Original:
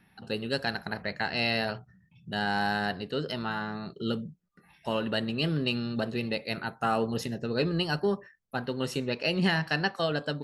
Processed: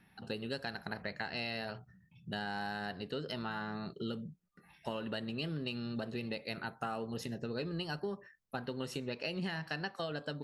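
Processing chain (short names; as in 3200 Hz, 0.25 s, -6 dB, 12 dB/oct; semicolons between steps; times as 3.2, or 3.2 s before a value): compressor 5:1, threshold -33 dBFS, peak gain reduction 11.5 dB; gain -2.5 dB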